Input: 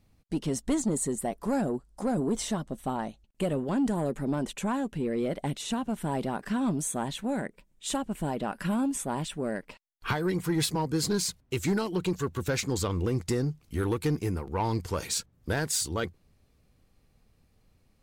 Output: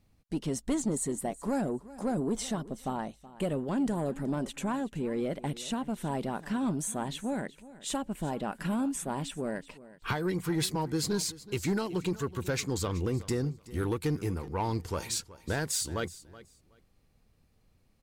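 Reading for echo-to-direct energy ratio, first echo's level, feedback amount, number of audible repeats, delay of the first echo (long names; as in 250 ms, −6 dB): −18.0 dB, −18.0 dB, 19%, 2, 374 ms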